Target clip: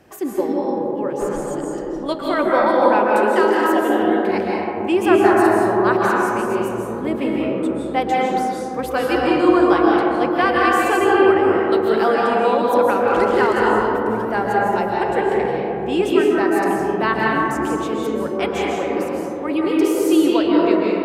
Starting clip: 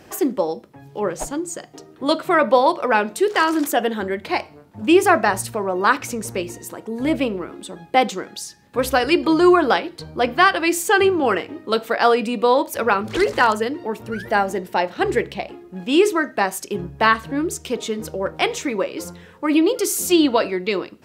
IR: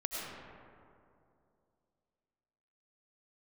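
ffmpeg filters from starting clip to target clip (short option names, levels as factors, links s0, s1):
-filter_complex "[0:a]equalizer=f=5200:w=0.64:g=-5.5,acrossover=split=510|5300[s0][s1][s2];[s2]asoftclip=type=tanh:threshold=0.0335[s3];[s0][s1][s3]amix=inputs=3:normalize=0[s4];[1:a]atrim=start_sample=2205,asetrate=27342,aresample=44100[s5];[s4][s5]afir=irnorm=-1:irlink=0,volume=0.562"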